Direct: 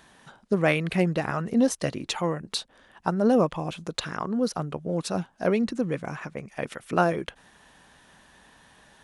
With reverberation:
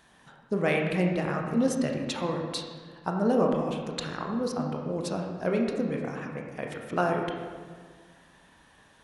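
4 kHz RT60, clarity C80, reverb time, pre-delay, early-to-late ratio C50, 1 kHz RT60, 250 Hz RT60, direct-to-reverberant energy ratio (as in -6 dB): 1.1 s, 4.5 dB, 1.6 s, 20 ms, 3.0 dB, 1.5 s, 2.0 s, 1.0 dB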